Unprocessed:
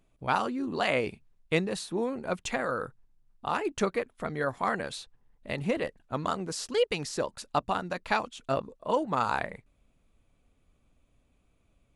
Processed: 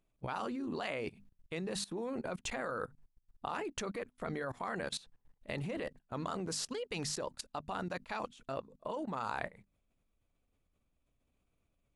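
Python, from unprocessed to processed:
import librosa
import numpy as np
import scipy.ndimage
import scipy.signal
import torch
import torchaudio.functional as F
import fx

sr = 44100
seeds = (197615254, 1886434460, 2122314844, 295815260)

y = fx.hum_notches(x, sr, base_hz=50, count=5)
y = fx.level_steps(y, sr, step_db=20)
y = F.gain(torch.from_numpy(y), 2.0).numpy()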